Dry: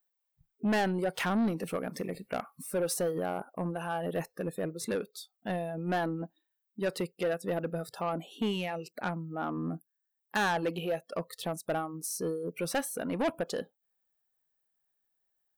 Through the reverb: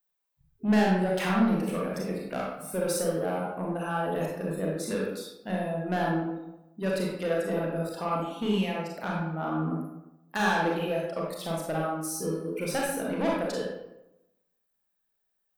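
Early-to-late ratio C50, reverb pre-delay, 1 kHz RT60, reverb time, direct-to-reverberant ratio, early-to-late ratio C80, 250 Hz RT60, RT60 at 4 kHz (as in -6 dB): 0.0 dB, 30 ms, 0.90 s, 0.95 s, -3.5 dB, 3.5 dB, 0.95 s, 0.55 s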